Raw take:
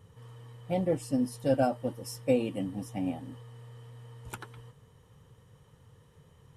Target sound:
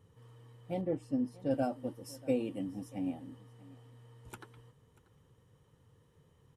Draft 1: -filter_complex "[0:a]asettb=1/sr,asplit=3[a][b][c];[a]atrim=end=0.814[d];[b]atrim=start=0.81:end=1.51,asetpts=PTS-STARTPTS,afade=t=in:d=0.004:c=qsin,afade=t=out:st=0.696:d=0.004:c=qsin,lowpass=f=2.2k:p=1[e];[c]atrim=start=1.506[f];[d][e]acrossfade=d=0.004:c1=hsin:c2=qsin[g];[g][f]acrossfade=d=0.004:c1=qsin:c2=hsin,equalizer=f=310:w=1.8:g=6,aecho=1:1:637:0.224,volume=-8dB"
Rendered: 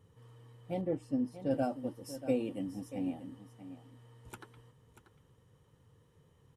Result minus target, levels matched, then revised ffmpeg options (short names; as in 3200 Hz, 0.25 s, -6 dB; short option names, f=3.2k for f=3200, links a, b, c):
echo-to-direct +8.5 dB
-filter_complex "[0:a]asettb=1/sr,asplit=3[a][b][c];[a]atrim=end=0.814[d];[b]atrim=start=0.81:end=1.51,asetpts=PTS-STARTPTS,afade=t=in:d=0.004:c=qsin,afade=t=out:st=0.696:d=0.004:c=qsin,lowpass=f=2.2k:p=1[e];[c]atrim=start=1.506[f];[d][e]acrossfade=d=0.004:c1=hsin:c2=qsin[g];[g][f]acrossfade=d=0.004:c1=qsin:c2=hsin,equalizer=f=310:w=1.8:g=6,aecho=1:1:637:0.0841,volume=-8dB"